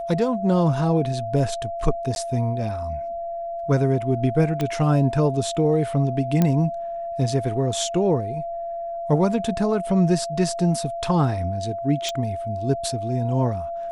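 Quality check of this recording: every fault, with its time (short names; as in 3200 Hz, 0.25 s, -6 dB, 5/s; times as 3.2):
tone 680 Hz -27 dBFS
2.15–2.16 gap
4.61 pop -12 dBFS
6.42 pop -7 dBFS
12.09 pop -13 dBFS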